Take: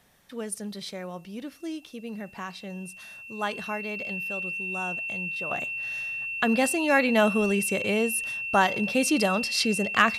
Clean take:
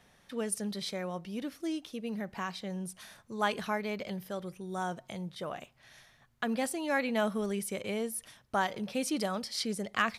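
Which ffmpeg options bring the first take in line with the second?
ffmpeg -i in.wav -af "bandreject=frequency=2700:width=30,agate=range=-21dB:threshold=-37dB,asetnsamples=nb_out_samples=441:pad=0,asendcmd='5.51 volume volume -8.5dB',volume=0dB" out.wav

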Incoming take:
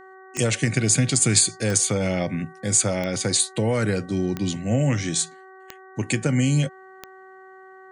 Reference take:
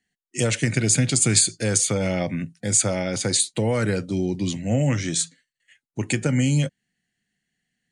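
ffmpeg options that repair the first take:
ffmpeg -i in.wav -af "adeclick=threshold=4,bandreject=frequency=378.8:width_type=h:width=4,bandreject=frequency=757.6:width_type=h:width=4,bandreject=frequency=1136.4:width_type=h:width=4,bandreject=frequency=1515.2:width_type=h:width=4,bandreject=frequency=1894:width_type=h:width=4" out.wav

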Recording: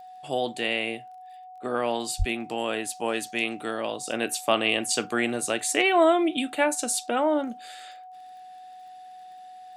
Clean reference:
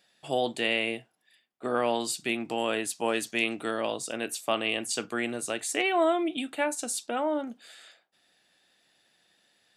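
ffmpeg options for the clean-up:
ffmpeg -i in.wav -filter_complex "[0:a]adeclick=threshold=4,bandreject=frequency=740:width=30,asplit=3[link_01][link_02][link_03];[link_01]afade=type=out:start_time=2.18:duration=0.02[link_04];[link_02]highpass=frequency=140:width=0.5412,highpass=frequency=140:width=1.3066,afade=type=in:start_time=2.18:duration=0.02,afade=type=out:start_time=2.3:duration=0.02[link_05];[link_03]afade=type=in:start_time=2.3:duration=0.02[link_06];[link_04][link_05][link_06]amix=inputs=3:normalize=0,asetnsamples=nb_out_samples=441:pad=0,asendcmd='4.07 volume volume -5dB',volume=0dB" out.wav

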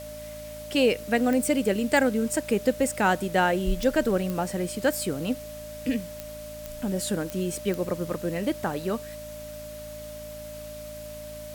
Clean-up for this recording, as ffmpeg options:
ffmpeg -i in.wav -af "adeclick=threshold=4,bandreject=frequency=54.8:width_type=h:width=4,bandreject=frequency=109.6:width_type=h:width=4,bandreject=frequency=164.4:width_type=h:width=4,bandreject=frequency=219.2:width_type=h:width=4,bandreject=frequency=274:width_type=h:width=4,bandreject=frequency=600:width=30,afwtdn=0.0045" out.wav

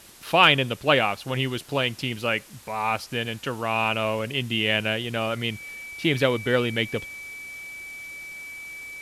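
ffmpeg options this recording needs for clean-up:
ffmpeg -i in.wav -af "adeclick=threshold=4,bandreject=frequency=2300:width=30,afwtdn=0.004" out.wav

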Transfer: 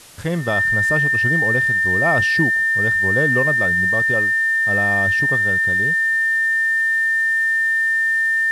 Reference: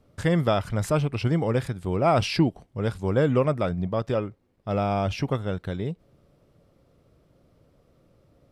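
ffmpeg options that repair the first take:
ffmpeg -i in.wav -af "adeclick=threshold=4,bandreject=frequency=1800:width=30,afwtdn=0.0079" out.wav

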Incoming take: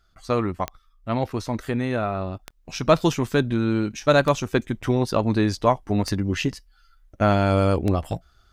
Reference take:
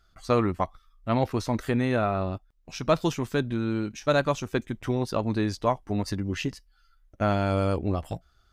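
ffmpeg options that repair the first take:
ffmpeg -i in.wav -af "adeclick=threshold=4,asetnsamples=nb_out_samples=441:pad=0,asendcmd='2.39 volume volume -5.5dB',volume=0dB" out.wav

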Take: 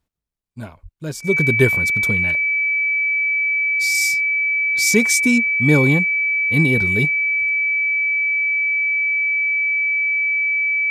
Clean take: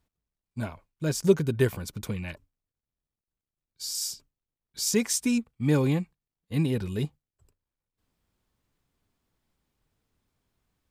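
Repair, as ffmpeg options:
ffmpeg -i in.wav -filter_complex "[0:a]bandreject=frequency=2300:width=30,asplit=3[link_01][link_02][link_03];[link_01]afade=type=out:start_time=0.82:duration=0.02[link_04];[link_02]highpass=frequency=140:width=0.5412,highpass=frequency=140:width=1.3066,afade=type=in:start_time=0.82:duration=0.02,afade=type=out:start_time=0.94:duration=0.02[link_05];[link_03]afade=type=in:start_time=0.94:duration=0.02[link_06];[link_04][link_05][link_06]amix=inputs=3:normalize=0,asetnsamples=nb_out_samples=441:pad=0,asendcmd='1.38 volume volume -8dB',volume=0dB" out.wav

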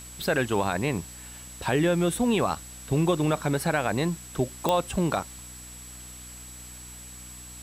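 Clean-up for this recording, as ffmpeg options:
ffmpeg -i in.wav -af "adeclick=threshold=4,bandreject=frequency=61.6:width_type=h:width=4,bandreject=frequency=123.2:width_type=h:width=4,bandreject=frequency=184.8:width_type=h:width=4,bandreject=frequency=246.4:width_type=h:width=4,bandreject=frequency=308:width_type=h:width=4,bandreject=frequency=7800:width=30,afwtdn=0.0045" out.wav

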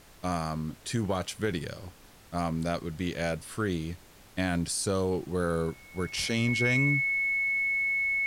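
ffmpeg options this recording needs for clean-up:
ffmpeg -i in.wav -af "bandreject=frequency=2200:width=30,afftdn=noise_reduction=22:noise_floor=-54" out.wav

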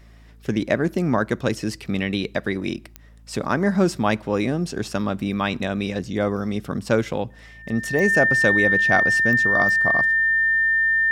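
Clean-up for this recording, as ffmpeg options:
ffmpeg -i in.wav -af "adeclick=threshold=4,bandreject=frequency=55.1:width_type=h:width=4,bandreject=frequency=110.2:width_type=h:width=4,bandreject=frequency=165.3:width_type=h:width=4,bandreject=frequency=220.4:width_type=h:width=4,bandreject=frequency=275.5:width_type=h:width=4,bandreject=frequency=1800:width=30" out.wav

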